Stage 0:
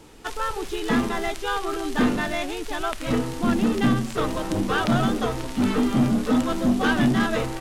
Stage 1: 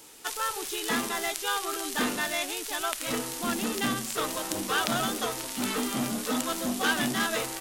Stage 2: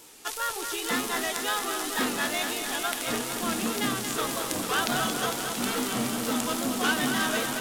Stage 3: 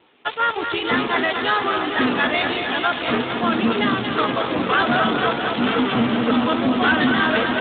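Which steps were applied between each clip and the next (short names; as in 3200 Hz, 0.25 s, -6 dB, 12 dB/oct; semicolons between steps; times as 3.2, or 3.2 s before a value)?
RIAA curve recording; gain -4 dB
wow and flutter 84 cents; lo-fi delay 0.227 s, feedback 80%, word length 8-bit, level -7 dB
in parallel at -3 dB: fuzz box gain 29 dB, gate -38 dBFS; on the sum: Speex 11 kbps 8000 Hz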